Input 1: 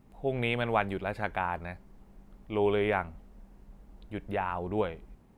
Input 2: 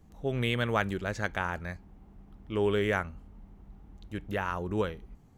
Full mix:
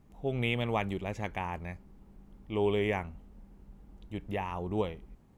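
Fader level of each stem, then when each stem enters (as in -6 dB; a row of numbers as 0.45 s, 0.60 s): -4.0 dB, -8.0 dB; 0.00 s, 0.00 s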